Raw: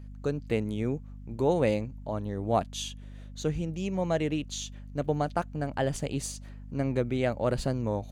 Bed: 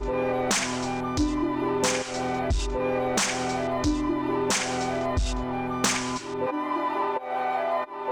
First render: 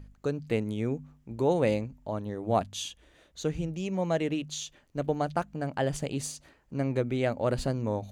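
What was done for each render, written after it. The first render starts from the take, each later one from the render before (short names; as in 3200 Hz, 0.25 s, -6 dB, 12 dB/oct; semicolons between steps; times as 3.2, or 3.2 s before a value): de-hum 50 Hz, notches 5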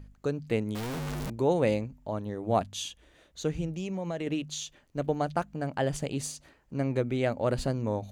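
0.75–1.3 infinite clipping; 3.77–4.27 compressor, threshold -29 dBFS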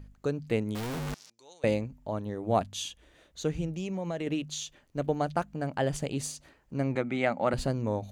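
1.14–1.64 band-pass 5500 Hz, Q 2.8; 6.95–7.54 speaker cabinet 190–8800 Hz, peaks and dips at 190 Hz +9 dB, 430 Hz -7 dB, 800 Hz +7 dB, 1300 Hz +6 dB, 2100 Hz +8 dB, 5600 Hz -6 dB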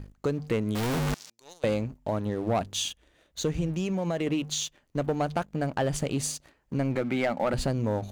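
sample leveller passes 2; compressor 2:1, threshold -27 dBFS, peak gain reduction 6 dB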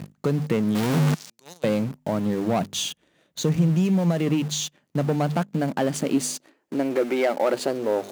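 in parallel at -11 dB: companded quantiser 2-bit; on the sum: high-pass sweep 160 Hz -> 380 Hz, 5.23–7.06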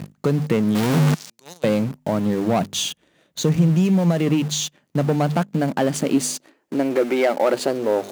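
gain +3.5 dB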